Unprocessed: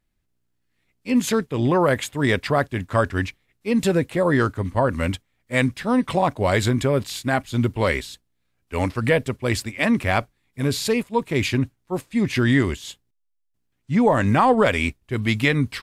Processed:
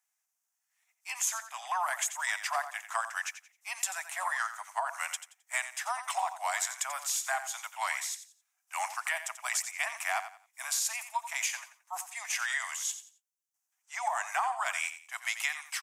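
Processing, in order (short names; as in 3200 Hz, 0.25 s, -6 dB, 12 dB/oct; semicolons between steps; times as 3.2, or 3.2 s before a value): steep high-pass 690 Hz 96 dB/oct; resonant high shelf 5100 Hz +6.5 dB, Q 3; compressor, threshold -25 dBFS, peak gain reduction 10.5 dB; on a send: feedback echo 88 ms, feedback 27%, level -11.5 dB; on the sum: gain -3 dB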